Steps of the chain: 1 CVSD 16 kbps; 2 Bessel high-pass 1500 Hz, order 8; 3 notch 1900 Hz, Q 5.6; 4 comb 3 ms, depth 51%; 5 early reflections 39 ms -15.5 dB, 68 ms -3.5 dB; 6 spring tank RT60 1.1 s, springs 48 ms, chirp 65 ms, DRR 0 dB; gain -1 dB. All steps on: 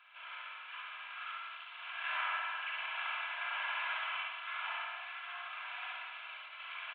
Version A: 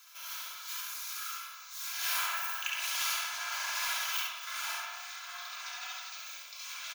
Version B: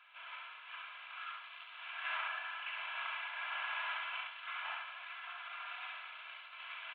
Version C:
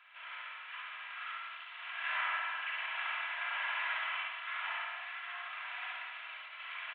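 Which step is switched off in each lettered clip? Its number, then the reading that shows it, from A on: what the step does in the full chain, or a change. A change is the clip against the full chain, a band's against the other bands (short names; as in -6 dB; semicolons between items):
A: 1, 4 kHz band +7.0 dB; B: 6, echo-to-direct 3.0 dB to -3.0 dB; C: 3, 2 kHz band +2.0 dB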